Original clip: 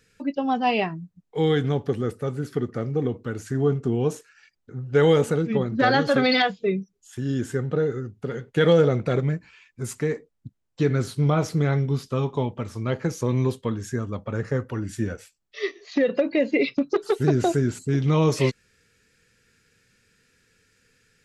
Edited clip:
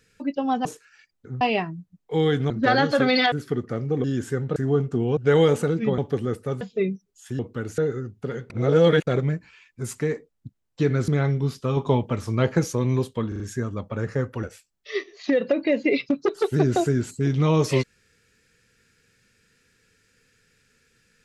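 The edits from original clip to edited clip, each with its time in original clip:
0:01.74–0:02.37: swap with 0:05.66–0:06.48
0:03.09–0:03.48: swap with 0:07.26–0:07.78
0:04.09–0:04.85: move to 0:00.65
0:08.50–0:09.07: reverse
0:11.08–0:11.56: remove
0:12.25–0:13.20: clip gain +4.5 dB
0:13.76: stutter 0.04 s, 4 plays
0:14.79–0:15.11: remove

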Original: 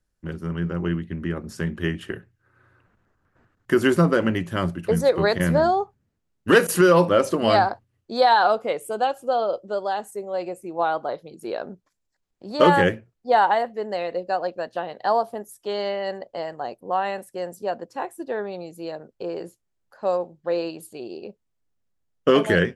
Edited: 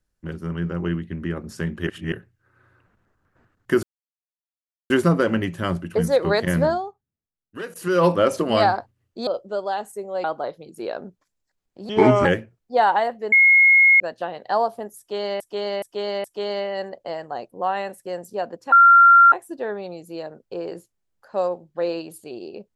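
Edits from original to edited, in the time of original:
0:01.87–0:02.12: reverse
0:03.83: splice in silence 1.07 s
0:05.58–0:06.98: duck −17.5 dB, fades 0.38 s quadratic
0:08.20–0:09.46: remove
0:10.43–0:10.89: remove
0:12.54–0:12.80: play speed 72%
0:13.87–0:14.55: beep over 2,160 Hz −10 dBFS
0:15.53–0:15.95: repeat, 4 plays
0:18.01: insert tone 1,380 Hz −7.5 dBFS 0.60 s

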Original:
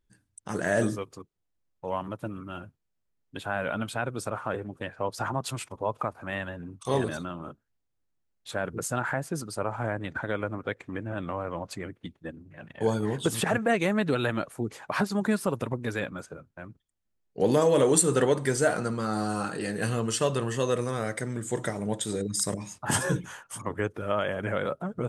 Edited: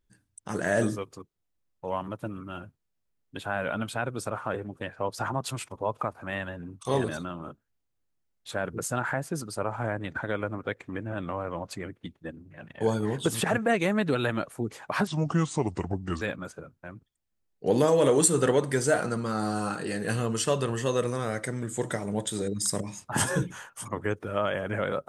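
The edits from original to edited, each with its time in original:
0:15.07–0:15.95: play speed 77%

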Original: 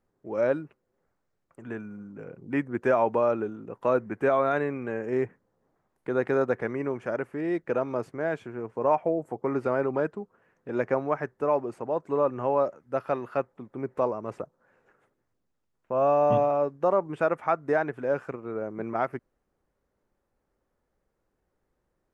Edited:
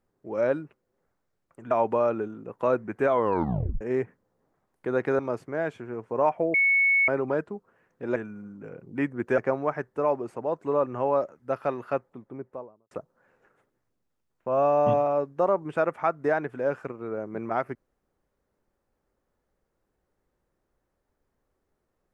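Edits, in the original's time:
0:01.71–0:02.93: move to 0:10.82
0:04.33: tape stop 0.70 s
0:06.41–0:07.85: remove
0:09.20–0:09.74: beep over 2,210 Hz −18 dBFS
0:13.37–0:14.35: fade out and dull

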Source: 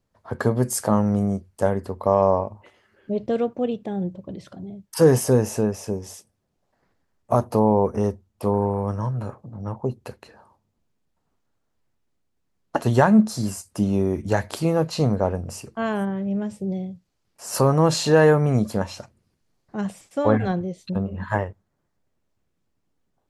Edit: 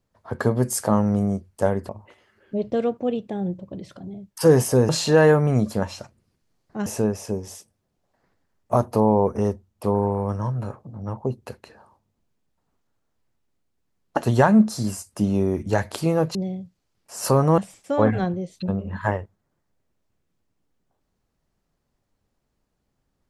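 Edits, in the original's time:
0:01.89–0:02.45: remove
0:14.94–0:16.65: remove
0:17.88–0:19.85: move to 0:05.45

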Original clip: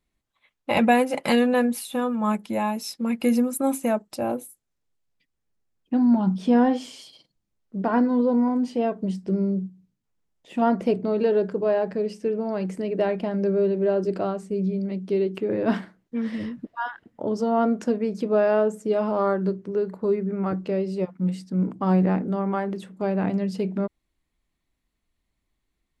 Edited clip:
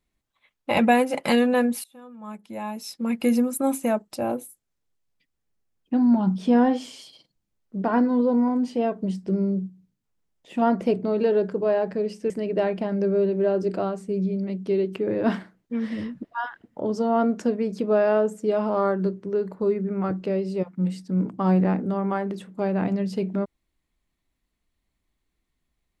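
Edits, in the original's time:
0:01.84–0:03.11: fade in quadratic, from −22 dB
0:12.30–0:12.72: remove

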